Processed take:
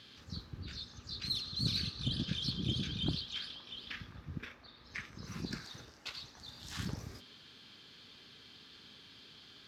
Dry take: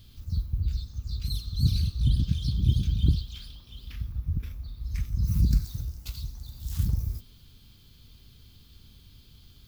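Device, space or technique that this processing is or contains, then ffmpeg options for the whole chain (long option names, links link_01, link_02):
intercom: -filter_complex "[0:a]highpass=340,lowpass=4400,equalizer=frequency=1700:width_type=o:width=0.46:gain=6.5,asoftclip=type=tanh:threshold=-29.5dB,asettb=1/sr,asplit=3[link_01][link_02][link_03];[link_01]atrim=end=4.454[link_04];[link_02]atrim=start=4.45:end=6.37,asetpts=PTS-STARTPTS,afade=type=in:duration=0.004:curve=qsin,afade=type=out:start_time=1.916:duration=0.004:curve=qsin,bass=frequency=250:gain=-8,treble=frequency=4000:gain=-5[link_05];[link_03]atrim=start=6.366[link_06];[link_04][link_05]acrossfade=duration=0.004:curve1=hsin:curve2=qsin[link_07];[link_07][link_06]acrossfade=duration=0.004:curve1=qsin:curve2=hsin,volume=6.5dB"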